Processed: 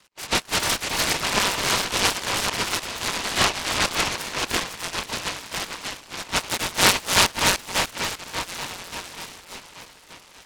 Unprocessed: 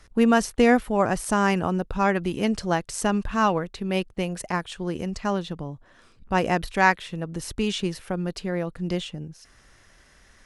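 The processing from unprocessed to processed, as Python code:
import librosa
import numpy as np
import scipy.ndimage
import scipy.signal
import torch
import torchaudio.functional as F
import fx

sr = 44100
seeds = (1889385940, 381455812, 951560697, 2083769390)

p1 = fx.reverse_delay(x, sr, ms=227, wet_db=-1.5)
p2 = scipy.signal.sosfilt(scipy.signal.cheby1(5, 1.0, [910.0, 2300.0], 'bandpass', fs=sr, output='sos'), p1)
p3 = p2 + fx.echo_split(p2, sr, split_hz=1300.0, low_ms=585, high_ms=297, feedback_pct=52, wet_db=-3, dry=0)
p4 = fx.noise_mod_delay(p3, sr, seeds[0], noise_hz=1500.0, depth_ms=0.25)
y = p4 * librosa.db_to_amplitude(3.0)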